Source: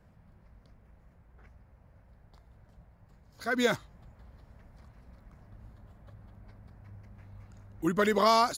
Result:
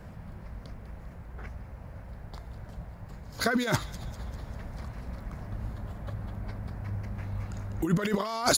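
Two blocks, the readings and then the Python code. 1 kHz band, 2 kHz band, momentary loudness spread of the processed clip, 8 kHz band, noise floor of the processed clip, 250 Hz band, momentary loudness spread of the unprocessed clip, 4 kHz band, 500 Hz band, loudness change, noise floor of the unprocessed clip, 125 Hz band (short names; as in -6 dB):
-4.5 dB, +0.5 dB, 17 LU, +9.5 dB, -46 dBFS, +2.5 dB, 13 LU, +2.0 dB, -3.0 dB, -7.0 dB, -61 dBFS, +11.5 dB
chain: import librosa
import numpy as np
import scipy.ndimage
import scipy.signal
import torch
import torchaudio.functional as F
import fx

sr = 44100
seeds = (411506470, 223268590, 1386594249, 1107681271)

y = fx.over_compress(x, sr, threshold_db=-35.0, ratio=-1.0)
y = fx.echo_wet_highpass(y, sr, ms=198, feedback_pct=53, hz=2800.0, wet_db=-13.0)
y = y * 10.0 ** (8.0 / 20.0)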